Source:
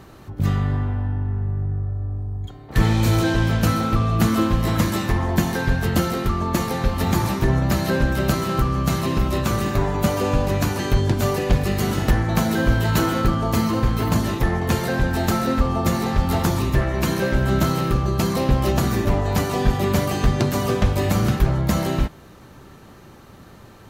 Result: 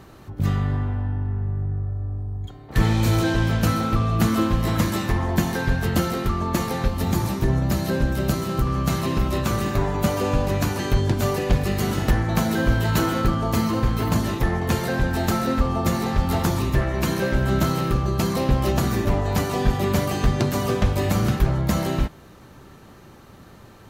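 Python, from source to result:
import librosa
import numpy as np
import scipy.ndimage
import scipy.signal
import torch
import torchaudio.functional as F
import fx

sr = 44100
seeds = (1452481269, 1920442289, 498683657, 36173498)

y = fx.peak_eq(x, sr, hz=1600.0, db=-4.5, octaves=2.7, at=(6.88, 8.67))
y = F.gain(torch.from_numpy(y), -1.5).numpy()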